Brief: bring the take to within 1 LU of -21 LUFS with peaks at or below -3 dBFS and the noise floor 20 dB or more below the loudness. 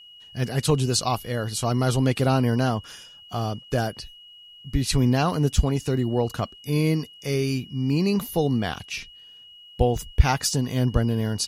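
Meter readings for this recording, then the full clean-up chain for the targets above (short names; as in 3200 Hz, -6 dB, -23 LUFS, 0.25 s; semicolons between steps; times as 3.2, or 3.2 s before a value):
steady tone 2900 Hz; tone level -45 dBFS; loudness -24.5 LUFS; peak -3.0 dBFS; loudness target -21.0 LUFS
-> notch 2900 Hz, Q 30; gain +3.5 dB; limiter -3 dBFS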